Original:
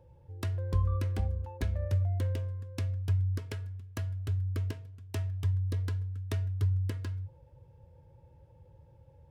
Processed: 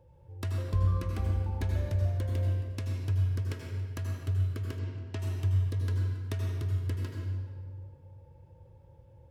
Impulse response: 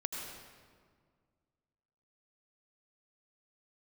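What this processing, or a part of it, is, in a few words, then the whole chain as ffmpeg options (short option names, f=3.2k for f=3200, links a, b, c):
stairwell: -filter_complex "[1:a]atrim=start_sample=2205[a];[0:a][a]afir=irnorm=-1:irlink=0,asplit=3[b][c][d];[b]afade=t=out:st=4.78:d=0.02[e];[c]lowpass=5.4k,afade=t=in:st=4.78:d=0.02,afade=t=out:st=5.18:d=0.02[f];[d]afade=t=in:st=5.18:d=0.02[g];[e][f][g]amix=inputs=3:normalize=0"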